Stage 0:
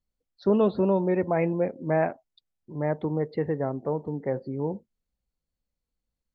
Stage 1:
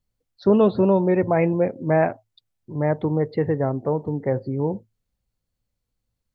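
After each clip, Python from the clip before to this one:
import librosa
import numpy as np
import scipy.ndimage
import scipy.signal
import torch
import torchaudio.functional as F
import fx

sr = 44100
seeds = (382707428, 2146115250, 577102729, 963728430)

y = fx.peak_eq(x, sr, hz=110.0, db=14.5, octaves=0.28)
y = F.gain(torch.from_numpy(y), 5.0).numpy()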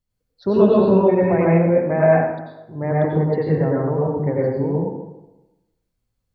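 y = fx.rev_plate(x, sr, seeds[0], rt60_s=1.0, hf_ratio=0.6, predelay_ms=80, drr_db=-5.5)
y = F.gain(torch.from_numpy(y), -3.5).numpy()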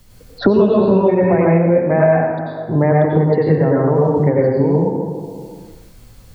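y = fx.band_squash(x, sr, depth_pct=100)
y = F.gain(torch.from_numpy(y), 3.0).numpy()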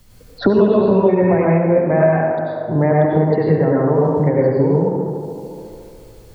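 y = fx.echo_tape(x, sr, ms=72, feedback_pct=90, wet_db=-10.0, lp_hz=2400.0, drive_db=-1.0, wow_cents=19)
y = F.gain(torch.from_numpy(y), -1.5).numpy()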